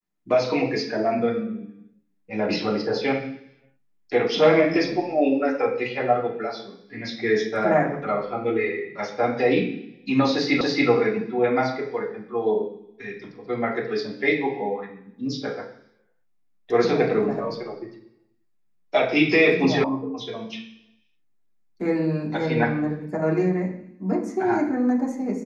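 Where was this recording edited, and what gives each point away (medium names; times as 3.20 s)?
10.61 s: repeat of the last 0.28 s
19.84 s: sound stops dead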